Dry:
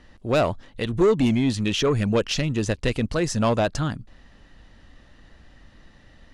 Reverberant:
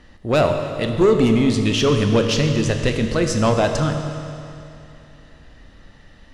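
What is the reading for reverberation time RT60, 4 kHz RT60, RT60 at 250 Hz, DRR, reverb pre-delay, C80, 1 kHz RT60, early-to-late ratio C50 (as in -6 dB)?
2.7 s, 2.6 s, 2.7 s, 4.5 dB, 21 ms, 6.5 dB, 2.7 s, 5.5 dB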